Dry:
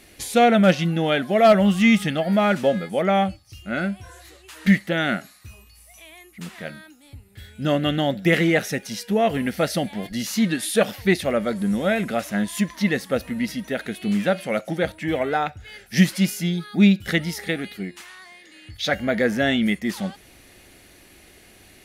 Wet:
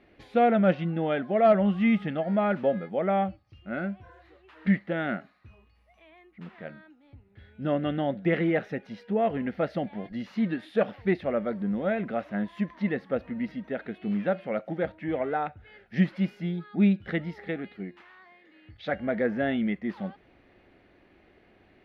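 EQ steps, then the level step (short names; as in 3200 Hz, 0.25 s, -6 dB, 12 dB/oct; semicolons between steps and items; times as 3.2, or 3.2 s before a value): air absorption 350 m; low shelf 150 Hz -8.5 dB; high shelf 2400 Hz -10 dB; -3.0 dB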